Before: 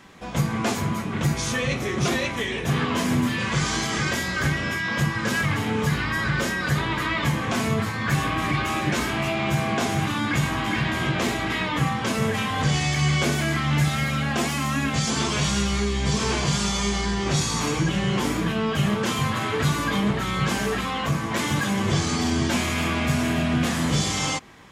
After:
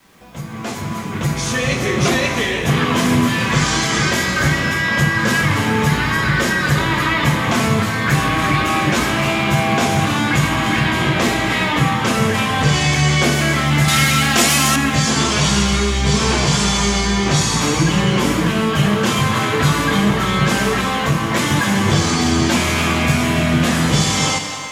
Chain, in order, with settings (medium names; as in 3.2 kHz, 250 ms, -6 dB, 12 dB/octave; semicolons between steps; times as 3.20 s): fade-in on the opening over 1.87 s; on a send at -5 dB: tone controls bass -8 dB, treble 0 dB + reverberation, pre-delay 3 ms; on the sum: upward compressor, threshold -45 dBFS; word length cut 10-bit, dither none; 13.88–14.76 s: treble shelf 2.8 kHz +11 dB; trim +7 dB